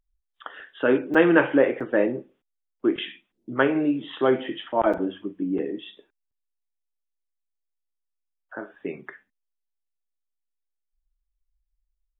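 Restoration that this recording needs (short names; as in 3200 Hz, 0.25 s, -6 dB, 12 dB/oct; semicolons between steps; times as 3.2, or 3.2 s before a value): interpolate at 1.14/1.8/4.93/6.31, 5.9 ms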